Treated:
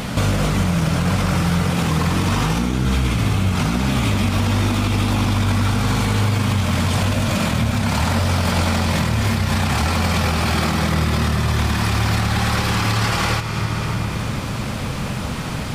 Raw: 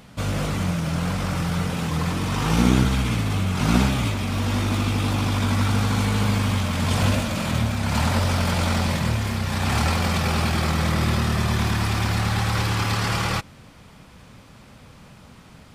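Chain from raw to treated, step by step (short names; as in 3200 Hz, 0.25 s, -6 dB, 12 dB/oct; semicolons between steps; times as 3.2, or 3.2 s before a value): reverb RT60 2.7 s, pre-delay 28 ms, DRR 10.5 dB; compressor 4:1, threshold -39 dBFS, peak gain reduction 22.5 dB; maximiser +29.5 dB; gain -8.5 dB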